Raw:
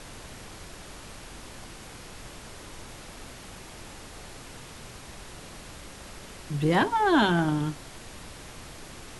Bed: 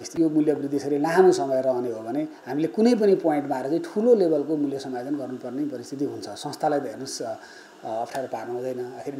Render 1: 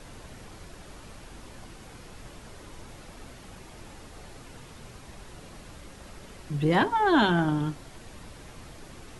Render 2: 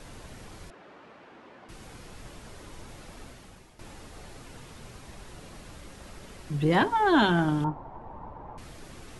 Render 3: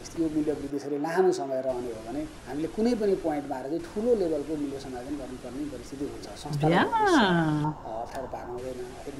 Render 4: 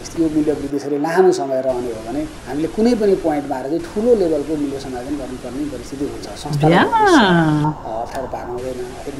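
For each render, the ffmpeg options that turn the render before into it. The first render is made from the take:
-af "afftdn=nr=6:nf=-45"
-filter_complex "[0:a]asettb=1/sr,asplit=3[s0][s1][s2];[s0]atrim=end=0.704[s3];[s1]atrim=start=0.7:end=1.69,asetpts=PTS-STARTPTS,afade=t=in:d=0.004:c=qsin,afade=t=out:st=0.986:d=0.004:c=qsin,highpass=280,lowpass=2200[s4];[s2]atrim=start=1.686[s5];[s3][s4]acrossfade=d=0.004:c1=hsin:c2=qsin[s6];[s6][s5]acrossfade=d=0.004:c1=qsin:c2=hsin,asettb=1/sr,asplit=3[s7][s8][s9];[s7]atrim=end=7.644[s10];[s8]atrim=start=7.64:end=8.58,asetpts=PTS-STARTPTS,afade=t=in:d=0.004:c=qsin,afade=t=out:st=0.936:d=0.004:c=qsin,lowpass=f=910:t=q:w=5.5[s11];[s9]atrim=start=8.576[s12];[s10][s11]acrossfade=d=0.004:c1=hsin:c2=qsin[s13];[s13][s12]acrossfade=d=0.004:c1=qsin:c2=hsin,asplit=2[s14][s15];[s14]atrim=end=3.79,asetpts=PTS-STARTPTS,afade=t=out:st=3.2:d=0.59:silence=0.251189[s16];[s15]atrim=start=3.79,asetpts=PTS-STARTPTS,afade=t=in:d=0.004:c=hsin:silence=0.251189[s17];[s16][s17]concat=n=2:v=0:a=1"
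-filter_complex "[1:a]volume=0.473[s0];[0:a][s0]amix=inputs=2:normalize=0"
-af "volume=3.35,alimiter=limit=0.891:level=0:latency=1"

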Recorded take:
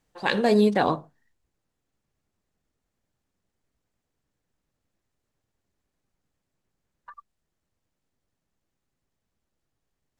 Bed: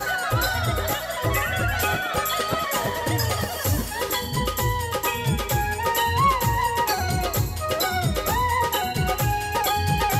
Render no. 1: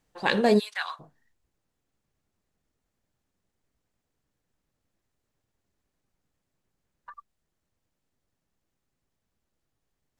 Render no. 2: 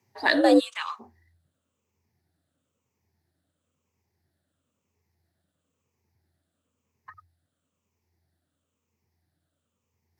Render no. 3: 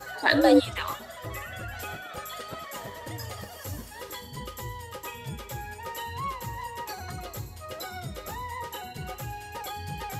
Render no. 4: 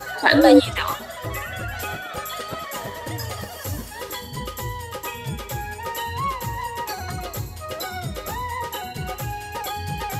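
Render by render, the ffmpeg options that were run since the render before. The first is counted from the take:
-filter_complex "[0:a]asplit=3[s0][s1][s2];[s0]afade=t=out:st=0.58:d=0.02[s3];[s1]highpass=f=1300:w=0.5412,highpass=f=1300:w=1.3066,afade=t=in:st=0.58:d=0.02,afade=t=out:st=0.99:d=0.02[s4];[s2]afade=t=in:st=0.99:d=0.02[s5];[s3][s4][s5]amix=inputs=3:normalize=0"
-af "afftfilt=real='re*pow(10,11/40*sin(2*PI*(0.73*log(max(b,1)*sr/1024/100)/log(2)-(-1)*(pts-256)/sr)))':imag='im*pow(10,11/40*sin(2*PI*(0.73*log(max(b,1)*sr/1024/100)/log(2)-(-1)*(pts-256)/sr)))':win_size=1024:overlap=0.75,afreqshift=84"
-filter_complex "[1:a]volume=0.2[s0];[0:a][s0]amix=inputs=2:normalize=0"
-af "volume=2.37,alimiter=limit=0.794:level=0:latency=1"

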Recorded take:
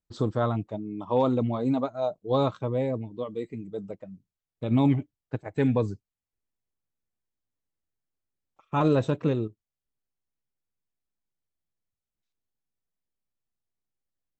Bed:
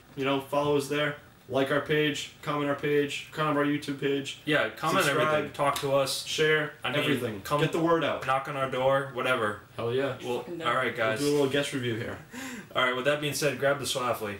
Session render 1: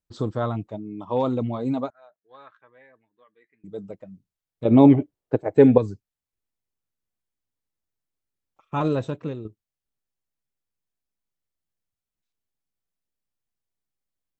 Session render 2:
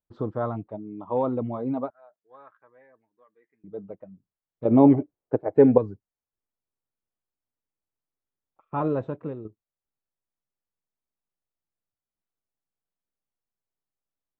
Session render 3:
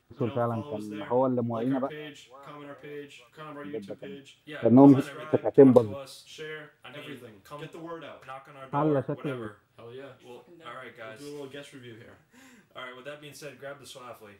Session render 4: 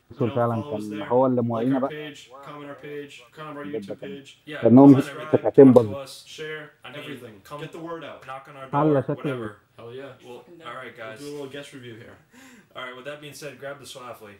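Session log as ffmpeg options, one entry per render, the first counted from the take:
-filter_complex "[0:a]asettb=1/sr,asplit=3[s0][s1][s2];[s0]atrim=end=1.904[s3];[s1]atrim=start=1.9:end=3.64,asetpts=PTS-STARTPTS,afade=t=in:d=0.004:c=qsin,afade=t=out:st=1.736:d=0.004:c=qsin,bandpass=f=1700:t=q:w=7.6[s4];[s2]atrim=start=3.636[s5];[s3][s4]acrossfade=d=0.004:c1=hsin:c2=qsin[s6];[s6][s5]acrossfade=d=0.004:c1=qsin:c2=hsin,asettb=1/sr,asplit=3[s7][s8][s9];[s7]atrim=end=4.654[s10];[s8]atrim=start=4.65:end=5.78,asetpts=PTS-STARTPTS,afade=t=in:d=0.004:c=qsin,afade=t=out:st=1.126:d=0.004:c=qsin,equalizer=f=460:w=0.62:g=14.5[s11];[s9]atrim=start=5.776[s12];[s10][s11]acrossfade=d=0.004:c1=hsin:c2=qsin[s13];[s13][s12]acrossfade=d=0.004:c1=qsin:c2=hsin,asplit=2[s14][s15];[s14]atrim=end=9.45,asetpts=PTS-STARTPTS,afade=t=out:st=8.75:d=0.7:silence=0.375837[s16];[s15]atrim=start=9.45,asetpts=PTS-STARTPTS,afade=t=in:d=0.004:c=hsin:silence=0.375837[s17];[s16][s17]concat=n=2:v=0:a=1"
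-af "lowpass=1300,lowshelf=f=230:g=-6.5"
-filter_complex "[1:a]volume=0.168[s0];[0:a][s0]amix=inputs=2:normalize=0"
-af "volume=1.88,alimiter=limit=0.891:level=0:latency=1"

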